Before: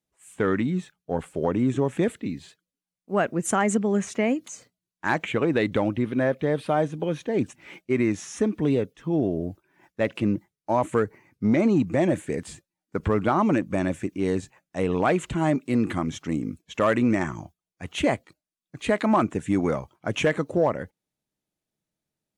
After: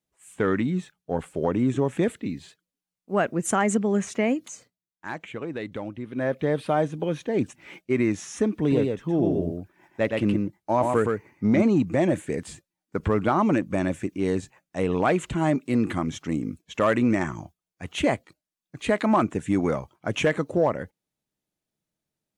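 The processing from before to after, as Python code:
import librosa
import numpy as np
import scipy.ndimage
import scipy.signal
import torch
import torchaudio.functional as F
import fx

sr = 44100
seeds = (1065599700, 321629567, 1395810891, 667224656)

y = fx.echo_single(x, sr, ms=118, db=-3.5, at=(8.65, 11.61), fade=0.02)
y = fx.edit(y, sr, fx.fade_down_up(start_s=4.49, length_s=1.89, db=-10.0, fade_s=0.3), tone=tone)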